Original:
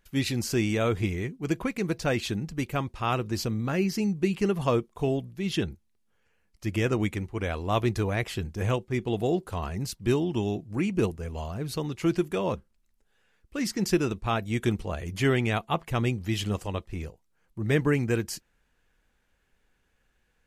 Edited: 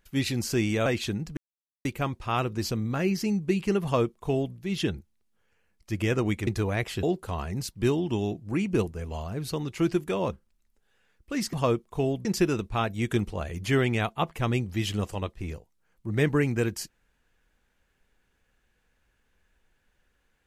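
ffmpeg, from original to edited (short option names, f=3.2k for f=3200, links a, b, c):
-filter_complex "[0:a]asplit=7[a][b][c][d][e][f][g];[a]atrim=end=0.862[h];[b]atrim=start=2.078:end=2.59,asetpts=PTS-STARTPTS,afade=t=out:st=0.508:d=0.004:c=hsin,apad=pad_dur=0.48[i];[c]atrim=start=2.59:end=7.212,asetpts=PTS-STARTPTS,afade=t=in:d=0.004:c=hsin[j];[d]atrim=start=7.868:end=8.432[k];[e]atrim=start=9.268:end=13.772[l];[f]atrim=start=4.568:end=5.292[m];[g]atrim=start=13.768[n];[i][j]concat=n=2:v=0:a=1[o];[h][o]acrossfade=d=0.004:c1=hsin:c2=hsin[p];[p][k]acrossfade=d=0.004:c1=hsin:c2=hsin[q];[q][l]acrossfade=d=0.004:c1=hsin:c2=hsin[r];[r][m]acrossfade=d=0.004:c1=hsin:c2=hsin[s];[s][n]acrossfade=d=0.004:c1=hsin:c2=hsin"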